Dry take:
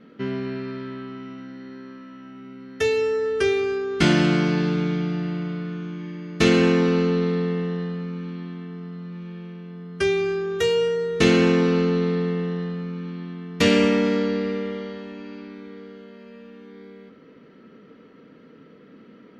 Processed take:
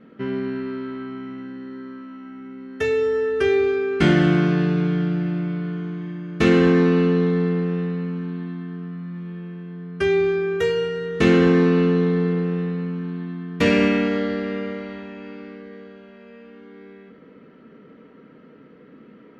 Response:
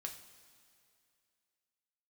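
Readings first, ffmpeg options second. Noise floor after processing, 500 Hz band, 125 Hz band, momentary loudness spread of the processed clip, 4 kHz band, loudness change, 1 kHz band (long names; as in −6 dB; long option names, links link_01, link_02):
−48 dBFS, +1.5 dB, +3.0 dB, 19 LU, −4.0 dB, +1.5 dB, +1.0 dB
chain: -filter_complex "[0:a]asplit=2[link_01][link_02];[link_02]lowpass=3100[link_03];[1:a]atrim=start_sample=2205,asetrate=24696,aresample=44100[link_04];[link_03][link_04]afir=irnorm=-1:irlink=0,volume=3dB[link_05];[link_01][link_05]amix=inputs=2:normalize=0,volume=-6dB"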